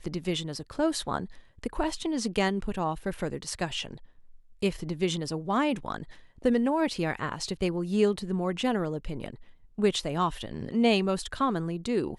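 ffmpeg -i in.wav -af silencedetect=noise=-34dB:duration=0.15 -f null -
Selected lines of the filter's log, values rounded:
silence_start: 1.25
silence_end: 1.64 | silence_duration: 0.38
silence_start: 3.94
silence_end: 4.62 | silence_duration: 0.68
silence_start: 6.03
silence_end: 6.45 | silence_duration: 0.42
silence_start: 9.34
silence_end: 9.78 | silence_duration: 0.45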